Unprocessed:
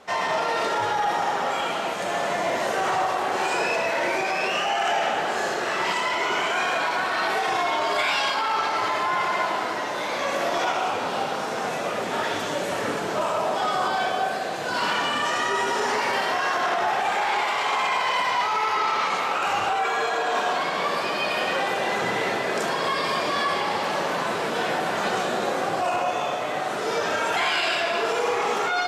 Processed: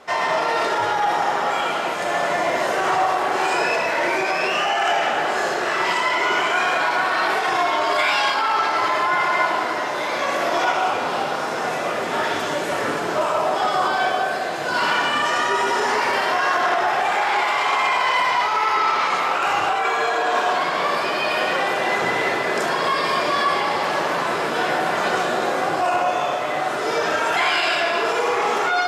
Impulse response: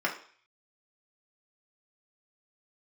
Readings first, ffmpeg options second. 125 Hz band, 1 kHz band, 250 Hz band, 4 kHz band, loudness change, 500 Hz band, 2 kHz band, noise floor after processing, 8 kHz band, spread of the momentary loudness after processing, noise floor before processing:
+1.5 dB, +4.0 dB, +3.0 dB, +2.5 dB, +4.0 dB, +3.5 dB, +4.5 dB, -24 dBFS, +1.5 dB, 4 LU, -28 dBFS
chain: -filter_complex "[0:a]asplit=2[a][b];[1:a]atrim=start_sample=2205[c];[b][c]afir=irnorm=-1:irlink=0,volume=-14dB[d];[a][d]amix=inputs=2:normalize=0,volume=1dB"

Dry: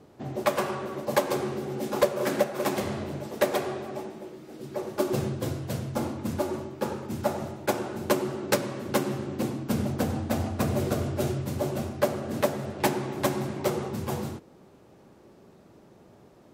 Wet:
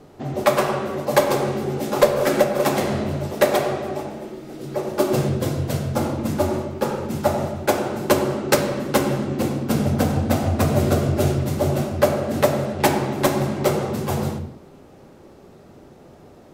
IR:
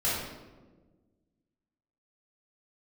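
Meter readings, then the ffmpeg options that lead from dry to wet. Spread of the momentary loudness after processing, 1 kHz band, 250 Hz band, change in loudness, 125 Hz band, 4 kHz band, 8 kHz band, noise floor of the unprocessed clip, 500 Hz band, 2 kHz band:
7 LU, +8.0 dB, +7.5 dB, +8.0 dB, +9.0 dB, +7.5 dB, +7.0 dB, -55 dBFS, +8.0 dB, +7.5 dB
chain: -filter_complex "[0:a]asplit=2[a][b];[b]lowshelf=f=65:g=10[c];[1:a]atrim=start_sample=2205,afade=t=out:st=0.32:d=0.01,atrim=end_sample=14553[d];[c][d]afir=irnorm=-1:irlink=0,volume=-15.5dB[e];[a][e]amix=inputs=2:normalize=0,volume=6dB"

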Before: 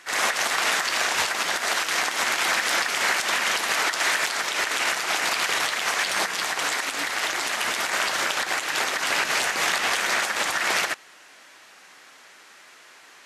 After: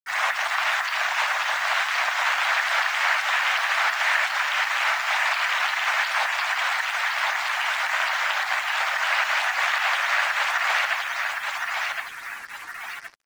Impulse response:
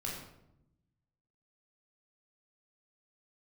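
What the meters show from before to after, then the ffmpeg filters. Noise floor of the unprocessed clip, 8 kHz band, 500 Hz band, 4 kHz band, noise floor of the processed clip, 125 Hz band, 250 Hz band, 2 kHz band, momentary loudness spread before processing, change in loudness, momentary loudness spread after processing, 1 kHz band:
-50 dBFS, -9.5 dB, -4.0 dB, -2.0 dB, -37 dBFS, under -10 dB, under -20 dB, +2.5 dB, 3 LU, +0.5 dB, 6 LU, +2.5 dB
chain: -filter_complex "[0:a]highpass=f=680:w=0.5412,highpass=f=680:w=1.3066,asplit=2[a][b];[b]aecho=0:1:1068|2136|3204|4272|5340|6408:0.631|0.284|0.128|0.0575|0.0259|0.0116[c];[a][c]amix=inputs=2:normalize=0,afftdn=nr=24:nf=-34,acrossover=split=3400[d][e];[e]acompressor=threshold=-41dB:ratio=4:attack=1:release=60[f];[d][f]amix=inputs=2:normalize=0,acrusher=bits=6:mix=0:aa=0.5,volume=1.5dB"

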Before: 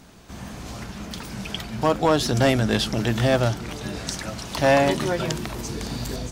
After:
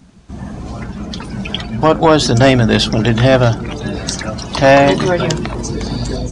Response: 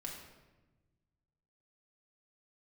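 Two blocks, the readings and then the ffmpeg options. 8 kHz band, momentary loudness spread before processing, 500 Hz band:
+7.0 dB, 16 LU, +9.5 dB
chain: -af "aresample=22050,aresample=44100,afftdn=nr=13:nf=-38,acontrast=61,volume=4dB"

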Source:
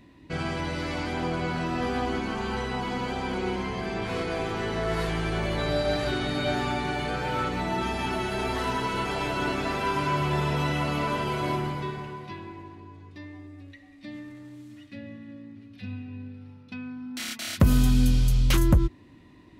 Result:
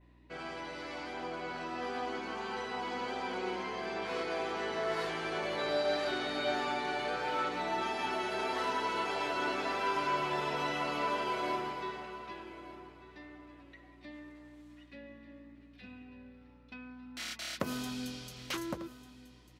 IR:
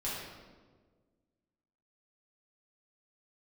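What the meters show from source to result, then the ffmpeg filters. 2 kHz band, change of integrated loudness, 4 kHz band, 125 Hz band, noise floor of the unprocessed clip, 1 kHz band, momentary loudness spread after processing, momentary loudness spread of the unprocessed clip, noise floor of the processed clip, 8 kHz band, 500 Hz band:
-5.0 dB, -7.5 dB, -5.5 dB, -23.0 dB, -51 dBFS, -4.5 dB, 19 LU, 20 LU, -58 dBFS, -8.5 dB, -5.5 dB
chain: -af "dynaudnorm=f=430:g=11:m=4.5dB,highpass=380,highshelf=f=4.1k:g=-9,aecho=1:1:1196|2392:0.158|0.0349,adynamicequalizer=threshold=0.00398:dfrequency=5300:dqfactor=1.2:tfrequency=5300:tqfactor=1.2:attack=5:release=100:ratio=0.375:range=2.5:mode=boostabove:tftype=bell,aeval=exprs='val(0)+0.00224*(sin(2*PI*60*n/s)+sin(2*PI*2*60*n/s)/2+sin(2*PI*3*60*n/s)/3+sin(2*PI*4*60*n/s)/4+sin(2*PI*5*60*n/s)/5)':c=same,volume=-8dB"

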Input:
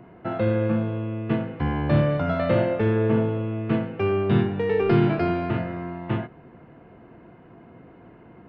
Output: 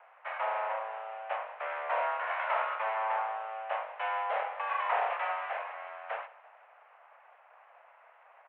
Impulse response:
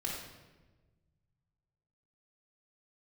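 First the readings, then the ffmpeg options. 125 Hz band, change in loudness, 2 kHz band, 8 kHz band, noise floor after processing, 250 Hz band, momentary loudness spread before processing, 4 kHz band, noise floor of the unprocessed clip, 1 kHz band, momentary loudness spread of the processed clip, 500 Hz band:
under -40 dB, -10.0 dB, -1.5 dB, n/a, -60 dBFS, under -40 dB, 9 LU, -7.0 dB, -49 dBFS, +2.0 dB, 10 LU, -13.5 dB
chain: -af "aeval=exprs='abs(val(0))':c=same,aecho=1:1:167|334|501|668|835:0.0891|0.0526|0.031|0.0183|0.0108,highpass=f=390:t=q:w=0.5412,highpass=f=390:t=q:w=1.307,lowpass=f=2.5k:t=q:w=0.5176,lowpass=f=2.5k:t=q:w=0.7071,lowpass=f=2.5k:t=q:w=1.932,afreqshift=220,volume=-3.5dB"

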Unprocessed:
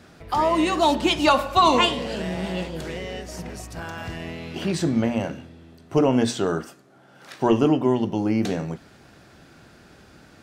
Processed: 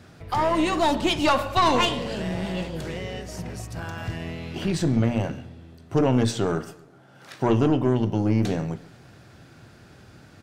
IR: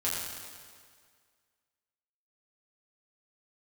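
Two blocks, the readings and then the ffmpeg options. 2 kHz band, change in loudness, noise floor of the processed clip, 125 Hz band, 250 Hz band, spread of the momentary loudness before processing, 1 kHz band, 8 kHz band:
-1.5 dB, -2.0 dB, -51 dBFS, +4.0 dB, -1.5 dB, 16 LU, -2.5 dB, -1.5 dB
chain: -filter_complex "[0:a]equalizer=f=110:w=2:g=9.5,aeval=exprs='(tanh(4.47*val(0)+0.4)-tanh(0.4))/4.47':c=same,asplit=2[a][b];[b]adelay=134,lowpass=f=3.3k:p=1,volume=-20dB,asplit=2[c][d];[d]adelay=134,lowpass=f=3.3k:p=1,volume=0.46,asplit=2[e][f];[f]adelay=134,lowpass=f=3.3k:p=1,volume=0.46[g];[a][c][e][g]amix=inputs=4:normalize=0"

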